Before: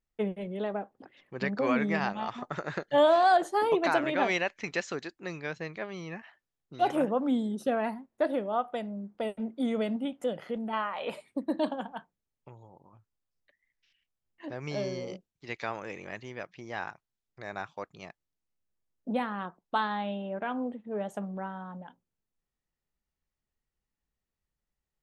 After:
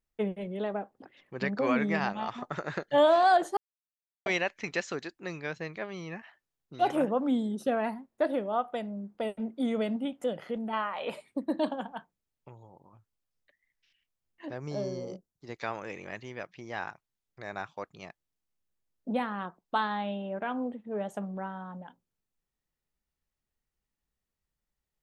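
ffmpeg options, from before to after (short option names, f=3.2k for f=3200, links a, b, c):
-filter_complex "[0:a]asettb=1/sr,asplit=3[a][b][c];[a]atrim=end=14.584[d];[b]atrim=start=14.58:end=15.61,asetpts=PTS-STARTPTS,afade=t=in:d=0.004:c=qsin,afade=t=out:st=1.026:d=0.004:c=qsin,equalizer=f=2.5k:t=o:w=1.2:g=-14[e];[c]atrim=start=15.606[f];[d][e]acrossfade=d=0.004:c1=hsin:c2=qsin[g];[g][f]acrossfade=d=0.004:c1=qsin:c2=hsin,asplit=3[h][i][j];[h]atrim=end=3.57,asetpts=PTS-STARTPTS,afade=t=out:st=3.566:d=0.004:c=hsin[k];[i]atrim=start=3.57:end=4.26,asetpts=PTS-STARTPTS,volume=0[l];[j]atrim=start=4.26,asetpts=PTS-STARTPTS,afade=t=in:d=0.004:c=hsin[m];[k][l][m]concat=n=3:v=0:a=1"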